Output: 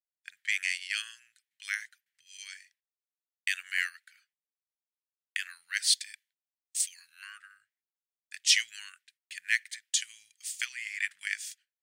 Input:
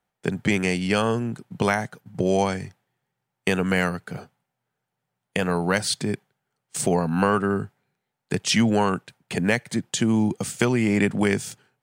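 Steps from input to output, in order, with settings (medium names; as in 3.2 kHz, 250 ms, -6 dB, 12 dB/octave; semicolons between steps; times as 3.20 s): gate -49 dBFS, range -12 dB; elliptic high-pass 1.8 kHz, stop band 60 dB; three bands expanded up and down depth 70%; trim -4 dB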